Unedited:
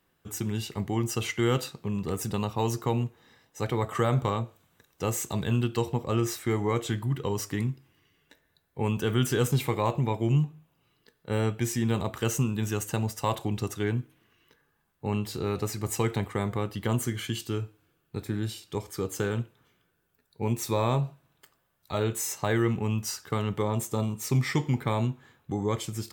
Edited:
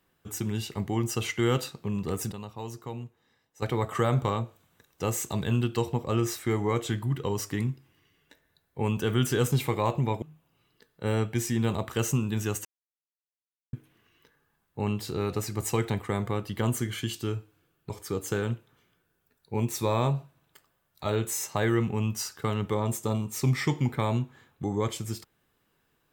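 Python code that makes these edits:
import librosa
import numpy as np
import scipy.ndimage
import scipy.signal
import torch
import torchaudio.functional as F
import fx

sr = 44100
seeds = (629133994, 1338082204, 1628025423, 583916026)

y = fx.edit(x, sr, fx.clip_gain(start_s=2.32, length_s=1.3, db=-10.5),
    fx.cut(start_s=10.22, length_s=0.26),
    fx.silence(start_s=12.91, length_s=1.08),
    fx.cut(start_s=18.16, length_s=0.62), tone=tone)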